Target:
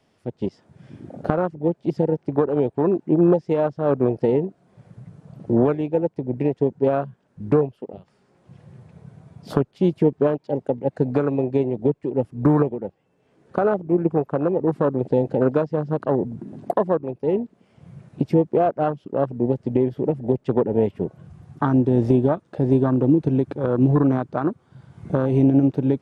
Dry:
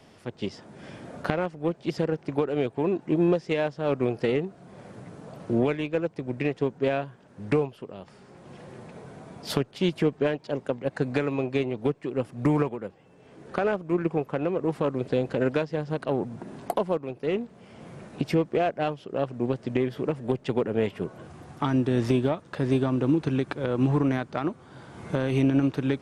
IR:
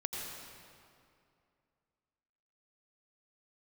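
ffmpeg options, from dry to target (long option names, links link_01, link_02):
-af "afwtdn=0.0316,volume=6dB"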